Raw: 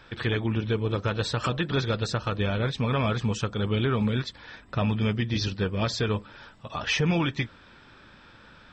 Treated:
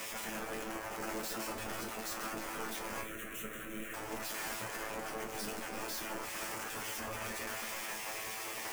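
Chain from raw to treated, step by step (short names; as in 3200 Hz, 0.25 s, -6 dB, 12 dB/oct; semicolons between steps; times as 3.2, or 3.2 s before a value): infinite clipping; bell 3800 Hz -11.5 dB 0.66 oct; darkening echo 0.324 s, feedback 48%, low-pass 1700 Hz, level -5 dB; spectral gate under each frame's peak -10 dB weak; 3.01–3.94 fixed phaser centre 2100 Hz, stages 4; resonator 110 Hz, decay 0.24 s, harmonics all, mix 90%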